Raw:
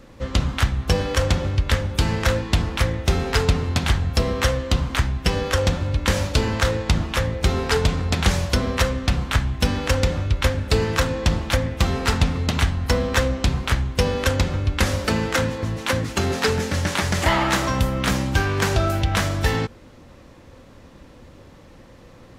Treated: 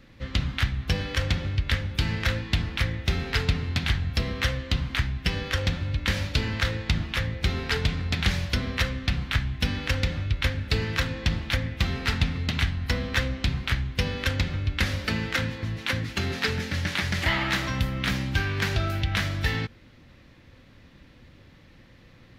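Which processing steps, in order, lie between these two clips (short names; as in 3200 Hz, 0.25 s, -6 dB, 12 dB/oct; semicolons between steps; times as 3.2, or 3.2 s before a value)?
graphic EQ 125/500/1000/2000/4000/8000 Hz +3/-5/-5/+6/+5/-8 dB; gain -6.5 dB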